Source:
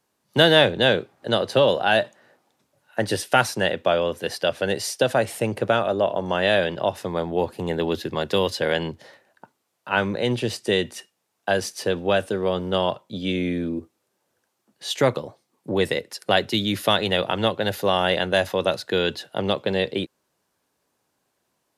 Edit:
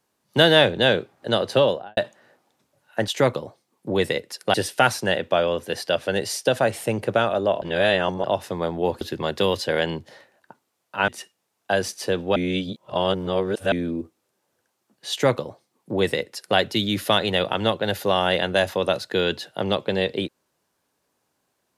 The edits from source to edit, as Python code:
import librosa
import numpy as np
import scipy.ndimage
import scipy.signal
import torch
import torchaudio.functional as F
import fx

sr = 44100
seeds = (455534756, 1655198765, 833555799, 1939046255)

y = fx.studio_fade_out(x, sr, start_s=1.58, length_s=0.39)
y = fx.edit(y, sr, fx.reverse_span(start_s=6.16, length_s=0.62),
    fx.cut(start_s=7.55, length_s=0.39),
    fx.cut(start_s=10.01, length_s=0.85),
    fx.reverse_span(start_s=12.14, length_s=1.36),
    fx.duplicate(start_s=14.89, length_s=1.46, to_s=3.08), tone=tone)